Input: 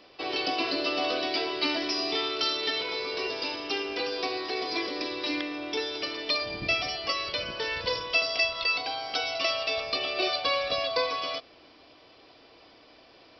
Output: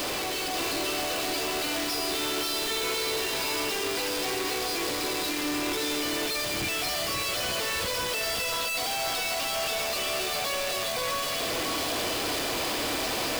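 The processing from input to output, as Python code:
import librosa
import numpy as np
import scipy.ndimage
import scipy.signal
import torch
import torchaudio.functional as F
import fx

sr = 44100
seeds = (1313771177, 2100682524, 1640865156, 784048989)

y = np.sign(x) * np.sqrt(np.mean(np.square(x)))
y = y + 10.0 ** (-4.0 / 20.0) * np.pad(y, (int(539 * sr / 1000.0), 0))[:len(y)]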